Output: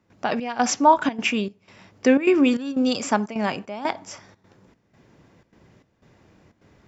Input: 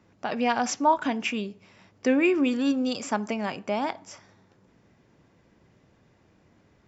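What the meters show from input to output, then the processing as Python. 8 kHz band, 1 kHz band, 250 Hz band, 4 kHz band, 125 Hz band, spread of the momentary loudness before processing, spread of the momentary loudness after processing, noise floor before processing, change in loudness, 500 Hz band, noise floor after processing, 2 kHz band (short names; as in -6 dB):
n/a, +5.0 dB, +4.0 dB, +4.5 dB, +5.0 dB, 10 LU, 12 LU, -63 dBFS, +4.5 dB, +4.5 dB, -66 dBFS, +3.5 dB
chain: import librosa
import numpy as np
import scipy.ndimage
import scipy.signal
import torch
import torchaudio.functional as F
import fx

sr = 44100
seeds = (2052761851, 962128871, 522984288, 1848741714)

y = fx.step_gate(x, sr, bpm=152, pattern='.xxx..xxxxx', floor_db=-12.0, edge_ms=4.5)
y = y * 10.0 ** (6.0 / 20.0)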